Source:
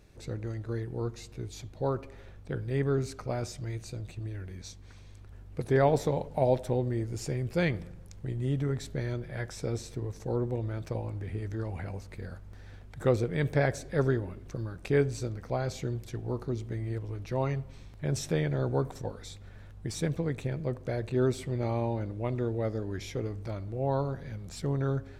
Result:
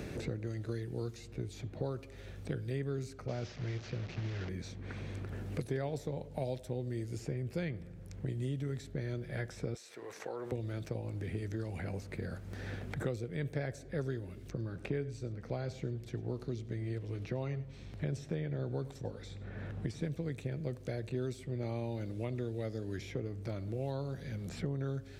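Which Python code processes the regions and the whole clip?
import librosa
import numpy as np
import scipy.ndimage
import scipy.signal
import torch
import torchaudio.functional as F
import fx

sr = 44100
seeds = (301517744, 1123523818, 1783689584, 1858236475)

y = fx.chain(x, sr, fx.delta_mod(bps=32000, step_db=-40.0),
    fx.notch(hz=310.0, q=6.2), at=(3.28, 4.49))
y = fx.chain(y, sr, fx.highpass(hz=1000.0, slope=12),
    fx.env_flatten(amount_pct=50), at=(9.74, 10.52))
y = fx.chain(y, sr, fx.lowpass(hz=2300.0, slope=6),
    fx.echo_single(ms=96, db=-19.5), at=(14.5, 20.02))
y = scipy.signal.sosfilt(scipy.signal.butter(2, 48.0, 'highpass', fs=sr, output='sos'), y)
y = fx.peak_eq(y, sr, hz=980.0, db=-7.5, octaves=1.0)
y = fx.band_squash(y, sr, depth_pct=100)
y = F.gain(torch.from_numpy(y), -6.5).numpy()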